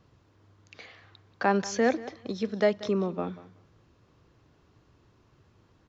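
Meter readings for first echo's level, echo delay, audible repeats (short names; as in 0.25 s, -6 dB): -18.0 dB, 0.185 s, 2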